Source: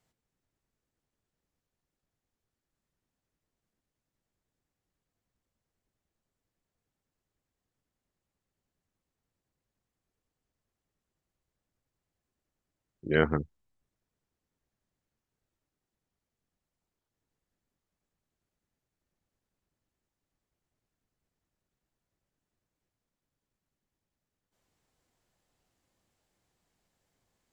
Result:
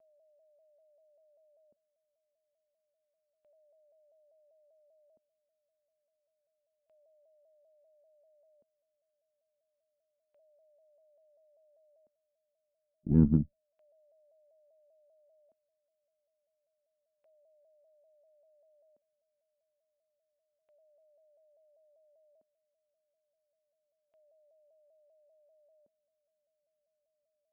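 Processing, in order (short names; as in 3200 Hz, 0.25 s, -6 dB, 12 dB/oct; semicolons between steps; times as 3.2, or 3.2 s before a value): minimum comb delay 0.75 ms; expander -36 dBFS; whine 610 Hz -65 dBFS; LFO low-pass square 0.29 Hz 230–2700 Hz; shaped vibrato saw down 5.1 Hz, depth 100 cents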